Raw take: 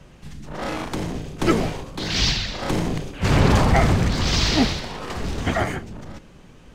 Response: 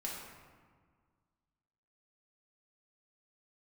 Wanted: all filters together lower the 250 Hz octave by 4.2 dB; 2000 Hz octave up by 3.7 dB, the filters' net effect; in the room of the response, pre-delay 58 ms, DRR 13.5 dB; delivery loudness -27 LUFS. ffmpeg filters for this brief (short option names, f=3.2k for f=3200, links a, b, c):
-filter_complex "[0:a]equalizer=f=250:t=o:g=-6,equalizer=f=2k:t=o:g=4.5,asplit=2[a][b];[1:a]atrim=start_sample=2205,adelay=58[c];[b][c]afir=irnorm=-1:irlink=0,volume=-14.5dB[d];[a][d]amix=inputs=2:normalize=0,volume=-5dB"